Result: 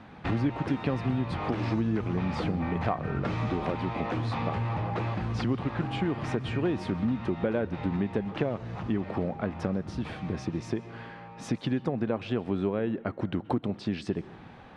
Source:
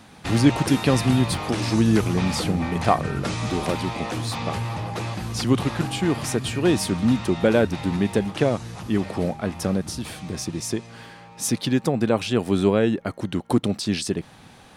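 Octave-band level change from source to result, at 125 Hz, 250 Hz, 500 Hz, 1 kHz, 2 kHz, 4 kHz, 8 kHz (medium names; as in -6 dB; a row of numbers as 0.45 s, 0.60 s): -6.0 dB, -7.5 dB, -8.0 dB, -6.0 dB, -8.0 dB, -13.5 dB, under -20 dB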